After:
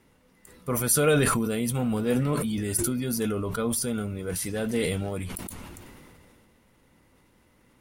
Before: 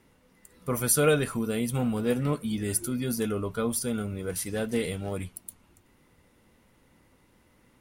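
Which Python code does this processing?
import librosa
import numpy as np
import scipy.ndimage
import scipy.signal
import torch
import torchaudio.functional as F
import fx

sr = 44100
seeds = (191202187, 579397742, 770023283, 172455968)

y = fx.sustainer(x, sr, db_per_s=22.0)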